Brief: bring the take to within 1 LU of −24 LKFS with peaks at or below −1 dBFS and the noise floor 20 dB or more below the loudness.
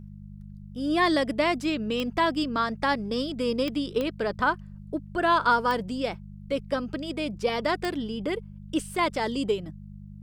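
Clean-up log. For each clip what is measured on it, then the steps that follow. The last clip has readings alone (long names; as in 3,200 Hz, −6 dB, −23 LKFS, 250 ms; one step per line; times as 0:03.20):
number of clicks 5; mains hum 50 Hz; hum harmonics up to 200 Hz; level of the hum −40 dBFS; integrated loudness −27.5 LKFS; sample peak −10.0 dBFS; target loudness −24.0 LKFS
→ click removal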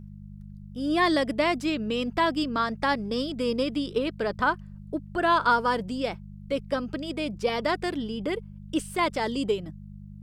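number of clicks 0; mains hum 50 Hz; hum harmonics up to 200 Hz; level of the hum −40 dBFS
→ hum removal 50 Hz, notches 4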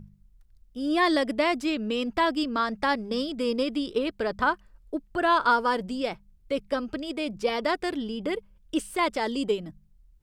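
mains hum none found; integrated loudness −27.5 LKFS; sample peak −10.0 dBFS; target loudness −24.0 LKFS
→ level +3.5 dB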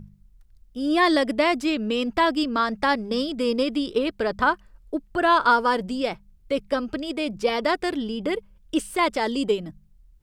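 integrated loudness −24.0 LKFS; sample peak −6.5 dBFS; background noise floor −56 dBFS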